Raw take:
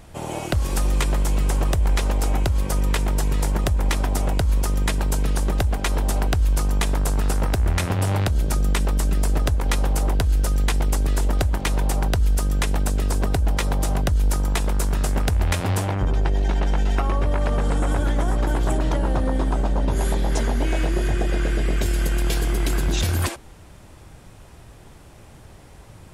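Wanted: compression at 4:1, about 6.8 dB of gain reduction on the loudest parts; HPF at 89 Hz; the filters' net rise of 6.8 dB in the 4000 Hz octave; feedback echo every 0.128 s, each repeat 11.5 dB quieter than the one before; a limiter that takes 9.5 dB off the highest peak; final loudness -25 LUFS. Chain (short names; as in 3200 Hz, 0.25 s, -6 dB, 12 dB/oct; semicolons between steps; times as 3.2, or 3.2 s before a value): HPF 89 Hz; bell 4000 Hz +8.5 dB; compressor 4:1, threshold -27 dBFS; limiter -20.5 dBFS; feedback echo 0.128 s, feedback 27%, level -11.5 dB; gain +7 dB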